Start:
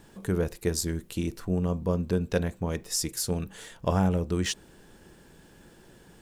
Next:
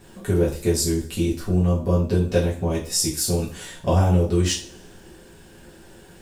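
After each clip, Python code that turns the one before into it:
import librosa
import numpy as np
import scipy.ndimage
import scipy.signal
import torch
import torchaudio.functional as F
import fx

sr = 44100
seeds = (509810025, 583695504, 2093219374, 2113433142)

y = fx.dynamic_eq(x, sr, hz=1600.0, q=1.2, threshold_db=-47.0, ratio=4.0, max_db=-6)
y = fx.rev_double_slope(y, sr, seeds[0], early_s=0.37, late_s=1.6, knee_db=-25, drr_db=-6.5)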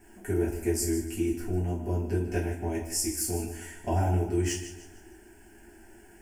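y = fx.fixed_phaser(x, sr, hz=770.0, stages=8)
y = fx.echo_feedback(y, sr, ms=152, feedback_pct=37, wet_db=-11.5)
y = y * librosa.db_to_amplitude(-4.0)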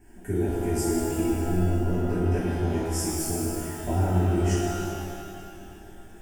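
y = fx.low_shelf(x, sr, hz=380.0, db=9.0)
y = fx.rev_shimmer(y, sr, seeds[1], rt60_s=2.3, semitones=12, shimmer_db=-8, drr_db=-2.0)
y = y * librosa.db_to_amplitude(-5.0)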